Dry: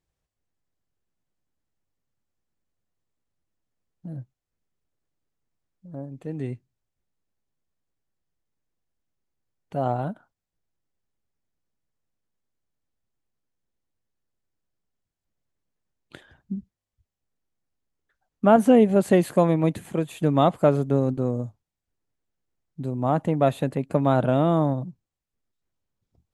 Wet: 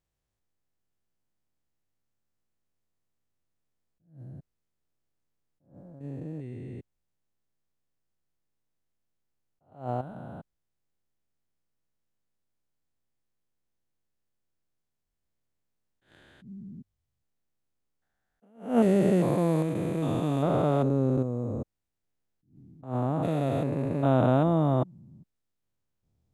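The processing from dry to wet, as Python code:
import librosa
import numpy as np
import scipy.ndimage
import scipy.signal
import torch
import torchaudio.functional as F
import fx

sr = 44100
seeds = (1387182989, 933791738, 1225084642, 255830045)

y = fx.spec_steps(x, sr, hold_ms=400)
y = fx.attack_slew(y, sr, db_per_s=160.0)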